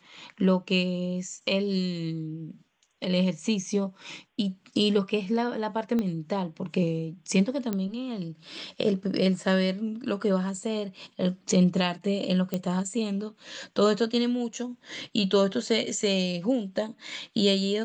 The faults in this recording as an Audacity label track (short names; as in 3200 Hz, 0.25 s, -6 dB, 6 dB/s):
5.990000	5.990000	pop -17 dBFS
7.730000	7.730000	pop -16 dBFS
12.540000	12.540000	pop -15 dBFS